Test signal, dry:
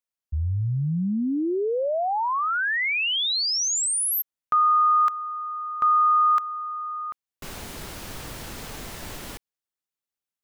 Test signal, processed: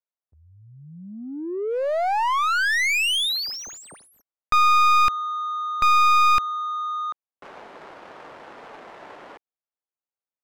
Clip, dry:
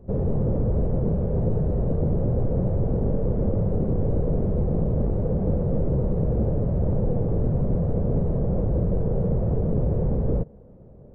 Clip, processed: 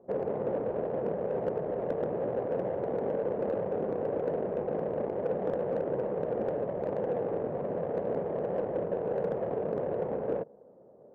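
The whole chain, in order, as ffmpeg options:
-af "highpass=590,adynamicsmooth=sensitivity=2.5:basefreq=920,aeval=exprs='clip(val(0),-1,0.0398)':c=same,volume=1.88"

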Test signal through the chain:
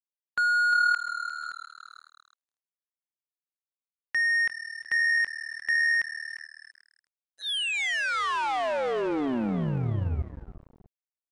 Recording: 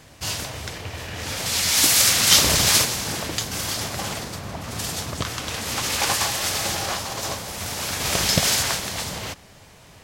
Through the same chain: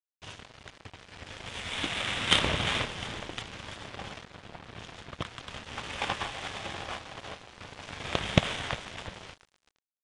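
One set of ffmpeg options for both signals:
-filter_complex "[0:a]asplit=2[s0][s1];[s1]adelay=179,lowpass=f=2100:p=1,volume=0.0891,asplit=2[s2][s3];[s3]adelay=179,lowpass=f=2100:p=1,volume=0.45,asplit=2[s4][s5];[s5]adelay=179,lowpass=f=2100:p=1,volume=0.45[s6];[s2][s4][s6]amix=inputs=3:normalize=0[s7];[s0][s7]amix=inputs=2:normalize=0,aresample=8000,aresample=44100,asplit=2[s8][s9];[s9]asplit=7[s10][s11][s12][s13][s14][s15][s16];[s10]adelay=351,afreqshift=-38,volume=0.316[s17];[s11]adelay=702,afreqshift=-76,volume=0.186[s18];[s12]adelay=1053,afreqshift=-114,volume=0.11[s19];[s13]adelay=1404,afreqshift=-152,volume=0.0653[s20];[s14]adelay=1755,afreqshift=-190,volume=0.0385[s21];[s15]adelay=2106,afreqshift=-228,volume=0.0226[s22];[s16]adelay=2457,afreqshift=-266,volume=0.0133[s23];[s17][s18][s19][s20][s21][s22][s23]amix=inputs=7:normalize=0[s24];[s8][s24]amix=inputs=2:normalize=0,aeval=exprs='0.596*(cos(1*acos(clip(val(0)/0.596,-1,1)))-cos(1*PI/2))+0.133*(cos(3*acos(clip(val(0)/0.596,-1,1)))-cos(3*PI/2))':c=same,aeval=exprs='sgn(val(0))*max(abs(val(0))-0.00944,0)':c=same,volume=1.5" -ar 22050 -c:a aac -b:a 64k

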